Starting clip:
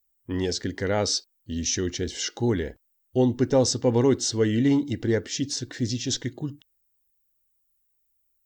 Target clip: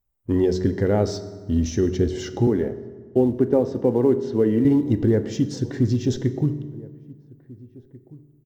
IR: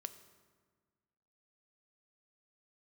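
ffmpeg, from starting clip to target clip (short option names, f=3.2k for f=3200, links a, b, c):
-filter_complex "[0:a]acompressor=threshold=-26dB:ratio=2.5,asettb=1/sr,asplit=3[a][b][c];[a]atrim=end=2.474[d];[b]atrim=start=2.47:end=4.65,asetpts=PTS-STARTPTS,afade=t=in:d=0.004:c=qsin,afade=t=out:st=2.176:d=0.004:c=qsin,acrossover=split=160 3400:gain=0.178 1 0.0891[e][f][g];[e][f][g]amix=inputs=3:normalize=0[h];[c]atrim=start=4.646[i];[d][h]acrossfade=d=0.004:c1=hsin:c2=qsin[j];[j][i]acrossfade=d=0.004:c1=qsin:c2=hsin,asplit=2[k][l];[l]adelay=1691,volume=-22dB,highshelf=f=4k:g=-38[m];[k][m]amix=inputs=2:normalize=0,acrusher=bits=6:mode=log:mix=0:aa=0.000001,tiltshelf=f=1.4k:g=10[n];[1:a]atrim=start_sample=2205[o];[n][o]afir=irnorm=-1:irlink=0,volume=4.5dB"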